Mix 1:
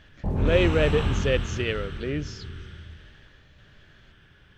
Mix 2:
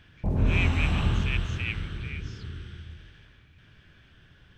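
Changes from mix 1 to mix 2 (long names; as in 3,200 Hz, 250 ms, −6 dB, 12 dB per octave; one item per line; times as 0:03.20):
speech: add four-pole ladder high-pass 2,200 Hz, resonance 80%
reverb: off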